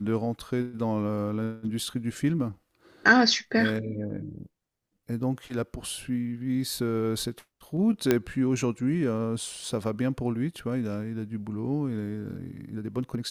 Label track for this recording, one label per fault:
8.110000	8.110000	pop -8 dBFS

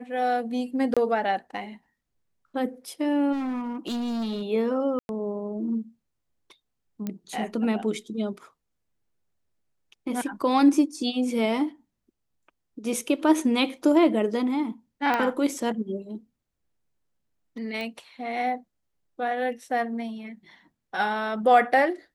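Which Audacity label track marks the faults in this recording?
0.940000	0.970000	dropout 26 ms
3.320000	4.420000	clipped -26.5 dBFS
4.990000	5.090000	dropout 101 ms
7.070000	7.070000	pop -18 dBFS
15.140000	15.140000	pop -13 dBFS
17.810000	17.810000	pop -22 dBFS

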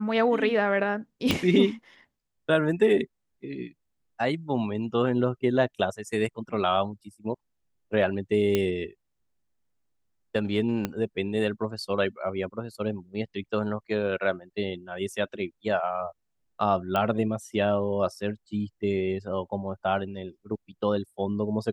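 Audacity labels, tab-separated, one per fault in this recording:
1.310000	1.310000	pop -9 dBFS
8.550000	8.550000	pop -11 dBFS
10.850000	10.850000	pop -13 dBFS
16.960000	16.960000	pop -14 dBFS

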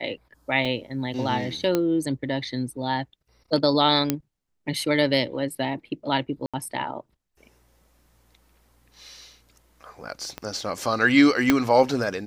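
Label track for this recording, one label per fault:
0.650000	0.650000	dropout 4.5 ms
1.750000	1.750000	pop -9 dBFS
4.100000	4.100000	pop -6 dBFS
6.460000	6.540000	dropout 76 ms
10.380000	10.380000	pop -17 dBFS
11.500000	11.500000	pop -4 dBFS

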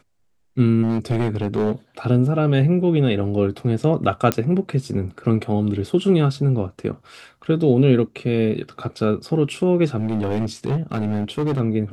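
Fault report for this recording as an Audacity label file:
0.820000	1.720000	clipped -15.5 dBFS
4.320000	4.320000	pop -4 dBFS
9.990000	11.610000	clipped -17.5 dBFS

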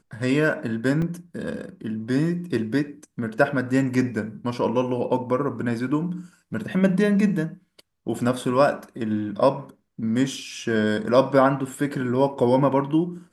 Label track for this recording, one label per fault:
1.020000	1.020000	dropout 2.6 ms

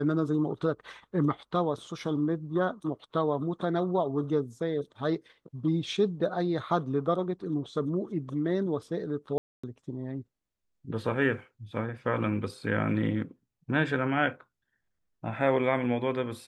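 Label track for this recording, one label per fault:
9.380000	9.630000	dropout 255 ms

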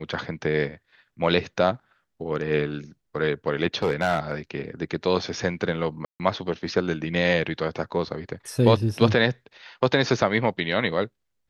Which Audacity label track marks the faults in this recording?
3.820000	4.320000	clipped -16.5 dBFS
6.050000	6.200000	dropout 148 ms

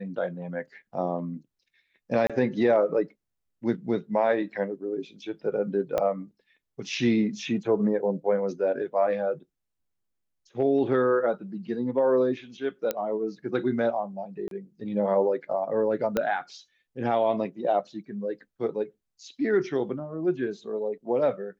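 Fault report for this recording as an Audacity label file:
2.270000	2.300000	dropout 26 ms
5.980000	5.980000	pop -14 dBFS
12.910000	12.910000	pop -13 dBFS
14.480000	14.510000	dropout 32 ms
16.170000	16.170000	pop -12 dBFS

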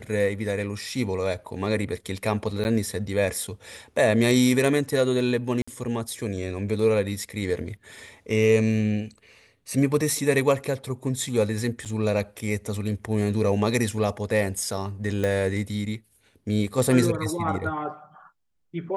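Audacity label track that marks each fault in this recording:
2.640000	2.650000	dropout 9.9 ms
5.620000	5.670000	dropout 55 ms
11.850000	11.860000	dropout 7.4 ms
15.240000	15.240000	pop -14 dBFS

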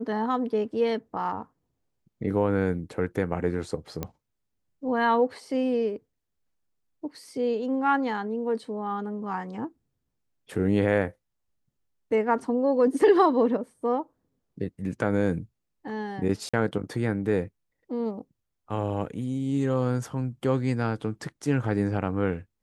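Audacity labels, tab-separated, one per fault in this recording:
4.030000	4.030000	pop -16 dBFS
16.490000	16.540000	dropout 45 ms

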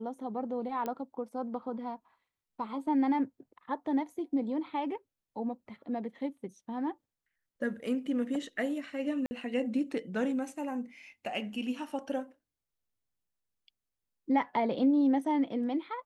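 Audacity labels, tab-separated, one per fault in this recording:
0.860000	0.860000	pop -22 dBFS
9.260000	9.310000	dropout 50 ms

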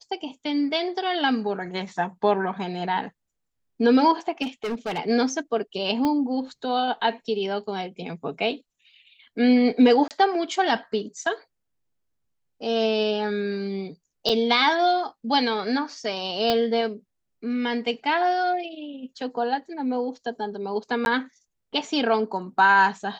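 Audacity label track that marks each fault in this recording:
4.420000	4.990000	clipped -24.5 dBFS
6.050000	6.050000	pop -12 dBFS
10.080000	10.110000	dropout 28 ms
14.290000	14.300000	dropout 5.5 ms
16.500000	16.500000	pop -9 dBFS
21.050000	21.060000	dropout 11 ms

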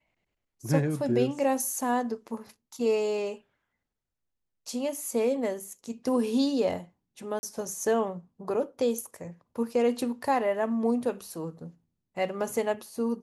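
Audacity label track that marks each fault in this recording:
7.390000	7.430000	dropout 40 ms

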